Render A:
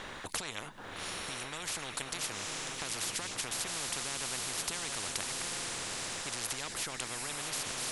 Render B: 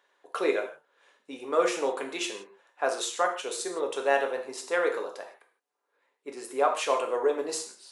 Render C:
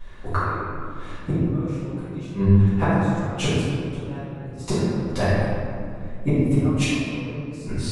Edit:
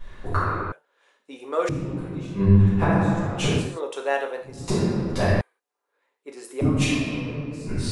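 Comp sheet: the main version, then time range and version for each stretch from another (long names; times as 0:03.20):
C
0:00.72–0:01.69: punch in from B
0:03.67–0:04.53: punch in from B, crossfade 0.24 s
0:05.41–0:06.61: punch in from B
not used: A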